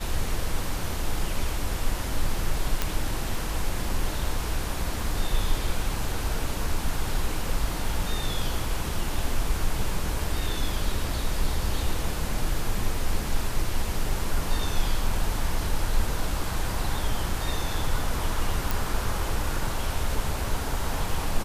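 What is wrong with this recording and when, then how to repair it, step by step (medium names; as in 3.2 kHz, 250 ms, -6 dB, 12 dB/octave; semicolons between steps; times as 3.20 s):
2.82 s: pop
18.71 s: pop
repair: de-click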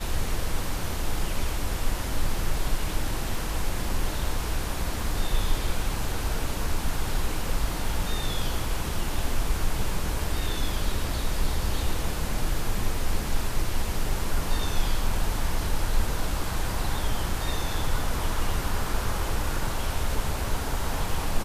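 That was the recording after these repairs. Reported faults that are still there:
nothing left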